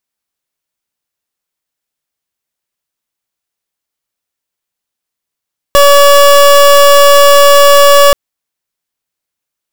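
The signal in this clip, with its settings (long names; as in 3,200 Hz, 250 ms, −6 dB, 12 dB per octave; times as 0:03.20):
pulse wave 569 Hz, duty 27% −3.5 dBFS 2.38 s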